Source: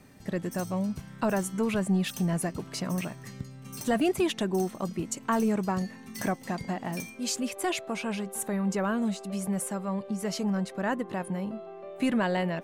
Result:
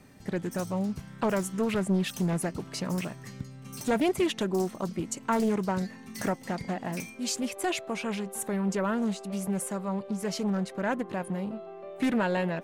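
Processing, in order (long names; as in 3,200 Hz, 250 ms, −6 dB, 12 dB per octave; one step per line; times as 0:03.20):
highs frequency-modulated by the lows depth 0.36 ms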